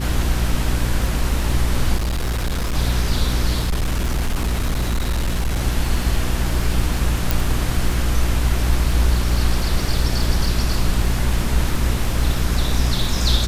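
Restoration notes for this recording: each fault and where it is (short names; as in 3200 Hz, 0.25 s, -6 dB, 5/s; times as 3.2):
crackle 26/s -23 dBFS
hum 60 Hz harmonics 6 -22 dBFS
1.97–2.76 clipped -18 dBFS
3.59–5.62 clipped -16 dBFS
7.31 pop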